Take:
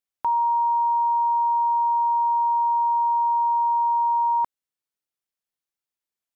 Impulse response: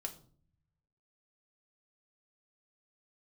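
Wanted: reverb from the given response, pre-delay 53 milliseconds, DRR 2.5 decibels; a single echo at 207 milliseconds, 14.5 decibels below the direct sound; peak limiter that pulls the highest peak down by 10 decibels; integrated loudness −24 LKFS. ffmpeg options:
-filter_complex "[0:a]alimiter=level_in=4dB:limit=-24dB:level=0:latency=1,volume=-4dB,aecho=1:1:207:0.188,asplit=2[link_01][link_02];[1:a]atrim=start_sample=2205,adelay=53[link_03];[link_02][link_03]afir=irnorm=-1:irlink=0,volume=-1dB[link_04];[link_01][link_04]amix=inputs=2:normalize=0,volume=5dB"

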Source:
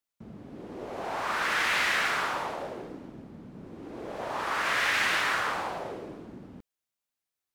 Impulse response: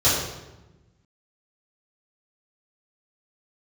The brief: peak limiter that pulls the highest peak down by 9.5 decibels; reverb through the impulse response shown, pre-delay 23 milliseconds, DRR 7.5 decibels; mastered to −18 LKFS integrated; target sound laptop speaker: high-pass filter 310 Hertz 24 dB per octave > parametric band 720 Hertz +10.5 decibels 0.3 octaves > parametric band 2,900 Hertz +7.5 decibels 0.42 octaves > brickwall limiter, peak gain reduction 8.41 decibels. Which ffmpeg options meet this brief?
-filter_complex "[0:a]alimiter=level_in=1dB:limit=-24dB:level=0:latency=1,volume=-1dB,asplit=2[link_01][link_02];[1:a]atrim=start_sample=2205,adelay=23[link_03];[link_02][link_03]afir=irnorm=-1:irlink=0,volume=-25.5dB[link_04];[link_01][link_04]amix=inputs=2:normalize=0,highpass=frequency=310:width=0.5412,highpass=frequency=310:width=1.3066,equalizer=frequency=720:width_type=o:width=0.3:gain=10.5,equalizer=frequency=2900:width_type=o:width=0.42:gain=7.5,volume=18dB,alimiter=limit=-9dB:level=0:latency=1"

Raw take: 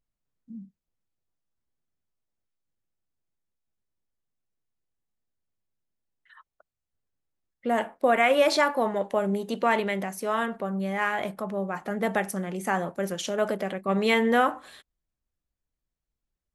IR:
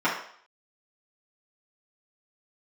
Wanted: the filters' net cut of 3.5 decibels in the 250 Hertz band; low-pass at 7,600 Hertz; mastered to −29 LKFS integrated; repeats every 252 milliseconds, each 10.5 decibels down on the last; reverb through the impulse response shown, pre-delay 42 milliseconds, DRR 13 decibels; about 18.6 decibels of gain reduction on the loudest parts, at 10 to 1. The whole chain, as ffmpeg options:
-filter_complex "[0:a]lowpass=7600,equalizer=frequency=250:width_type=o:gain=-4.5,acompressor=threshold=-37dB:ratio=10,aecho=1:1:252|504|756:0.299|0.0896|0.0269,asplit=2[link_01][link_02];[1:a]atrim=start_sample=2205,adelay=42[link_03];[link_02][link_03]afir=irnorm=-1:irlink=0,volume=-28.5dB[link_04];[link_01][link_04]amix=inputs=2:normalize=0,volume=12dB"

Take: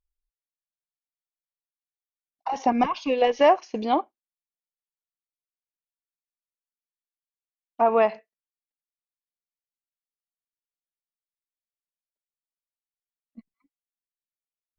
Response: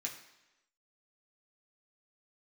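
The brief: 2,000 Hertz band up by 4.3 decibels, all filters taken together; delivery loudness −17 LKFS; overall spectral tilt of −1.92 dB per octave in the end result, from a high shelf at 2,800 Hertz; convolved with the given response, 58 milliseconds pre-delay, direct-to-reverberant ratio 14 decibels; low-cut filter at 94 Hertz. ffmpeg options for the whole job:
-filter_complex "[0:a]highpass=94,equalizer=frequency=2000:width_type=o:gain=7.5,highshelf=frequency=2800:gain=-6,asplit=2[link_01][link_02];[1:a]atrim=start_sample=2205,adelay=58[link_03];[link_02][link_03]afir=irnorm=-1:irlink=0,volume=-13.5dB[link_04];[link_01][link_04]amix=inputs=2:normalize=0,volume=5.5dB"

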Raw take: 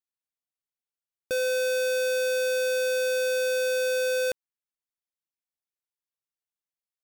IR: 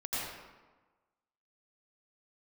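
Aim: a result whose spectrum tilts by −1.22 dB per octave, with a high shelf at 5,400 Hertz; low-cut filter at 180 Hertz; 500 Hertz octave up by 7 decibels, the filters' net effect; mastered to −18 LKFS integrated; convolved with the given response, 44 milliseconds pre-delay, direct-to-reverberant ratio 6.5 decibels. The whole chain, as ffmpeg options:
-filter_complex "[0:a]highpass=180,equalizer=frequency=500:width_type=o:gain=7,highshelf=frequency=5400:gain=5.5,asplit=2[link_01][link_02];[1:a]atrim=start_sample=2205,adelay=44[link_03];[link_02][link_03]afir=irnorm=-1:irlink=0,volume=-11.5dB[link_04];[link_01][link_04]amix=inputs=2:normalize=0,volume=0.5dB"

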